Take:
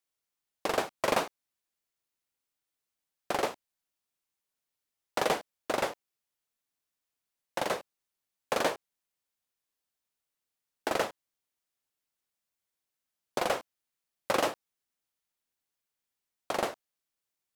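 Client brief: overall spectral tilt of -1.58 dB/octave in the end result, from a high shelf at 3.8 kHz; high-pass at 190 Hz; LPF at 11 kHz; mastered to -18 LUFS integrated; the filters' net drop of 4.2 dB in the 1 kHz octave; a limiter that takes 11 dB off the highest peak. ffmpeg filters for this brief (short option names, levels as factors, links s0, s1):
-af "highpass=190,lowpass=11000,equalizer=f=1000:t=o:g=-6,highshelf=f=3800:g=3.5,volume=12.6,alimiter=limit=0.708:level=0:latency=1"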